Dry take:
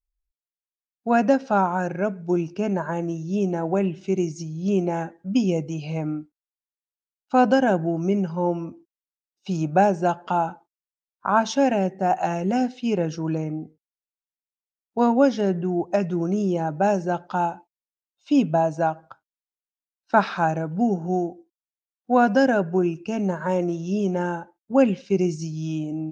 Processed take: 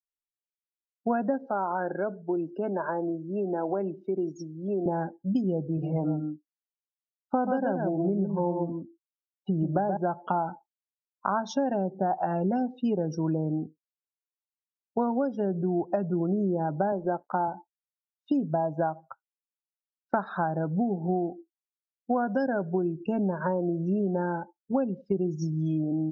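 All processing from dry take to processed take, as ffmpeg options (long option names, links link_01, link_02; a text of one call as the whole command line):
ffmpeg -i in.wav -filter_complex "[0:a]asettb=1/sr,asplit=3[link_01][link_02][link_03];[link_01]atrim=end=1.464[link_04];[link_02]atrim=start=1.46:end=4.86,asetpts=PTS-STARTPTS,afade=type=in:duration=0.004:curve=qsin,afade=type=out:start_time=3.396:duration=0.004:curve=qsin,acompressor=threshold=-24dB:ratio=2.5:attack=3.2:release=140:knee=1:detection=peak,acrossover=split=230 6400:gain=0.0708 1 0.0794[link_05][link_06][link_07];[link_05][link_06][link_07]amix=inputs=3:normalize=0[link_08];[link_03]atrim=start=4.856[link_09];[link_04][link_08]acrossfade=duration=0.004:curve1=hsin:curve2=qsin[link_10];[link_10][link_09]acrossfade=duration=0.004:curve1=qsin:curve2=hsin,asettb=1/sr,asplit=3[link_11][link_12][link_13];[link_11]atrim=end=5.644[link_14];[link_12]atrim=start=5.64:end=9.97,asetpts=PTS-STARTPTS,afade=type=in:duration=0.004:curve=qsin,afade=type=out:start_time=4.326:duration=0.004:curve=qsin,highshelf=frequency=3900:gain=-11,aecho=1:1:130:0.531,atrim=end_sample=190953[link_15];[link_13]atrim=start=9.966[link_16];[link_14][link_15]acrossfade=duration=0.004:curve1=hsin:curve2=qsin[link_17];[link_17][link_16]acrossfade=duration=0.004:curve1=qsin:curve2=hsin,asettb=1/sr,asplit=3[link_18][link_19][link_20];[link_18]atrim=end=16.924[link_21];[link_19]atrim=start=16.92:end=17.48,asetpts=PTS-STARTPTS,afade=type=in:duration=0.004:curve=qsin,afade=type=out:start_time=0.556:duration=0.004:curve=qsin,highpass=360,aemphasis=mode=reproduction:type=riaa,aeval=exprs='sgn(val(0))*max(abs(val(0))-0.00473,0)':channel_layout=same[link_22];[link_20]atrim=start=17.476[link_23];[link_21][link_22]acrossfade=duration=0.004:curve1=hsin:curve2=qsin[link_24];[link_24][link_23]acrossfade=duration=0.004:curve1=qsin:curve2=hsin,equalizer=frequency=100:width_type=o:width=0.67:gain=-3,equalizer=frequency=2500:width_type=o:width=0.67:gain=-9,equalizer=frequency=6300:width_type=o:width=0.67:gain=-4,acompressor=threshold=-25dB:ratio=10,afftdn=noise_reduction=34:noise_floor=-42,volume=2dB" out.wav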